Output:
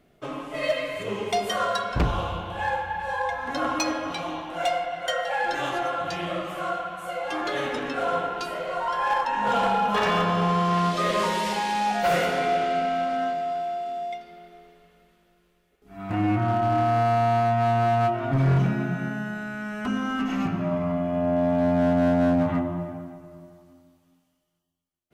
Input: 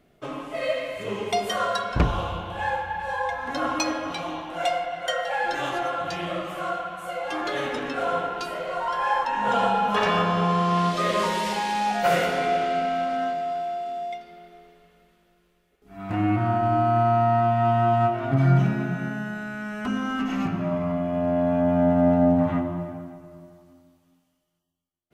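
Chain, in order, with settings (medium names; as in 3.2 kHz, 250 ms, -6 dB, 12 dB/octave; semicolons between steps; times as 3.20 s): 0.53–1.03 s: comb 6.7 ms, depth 84%; hard clipper -17 dBFS, distortion -16 dB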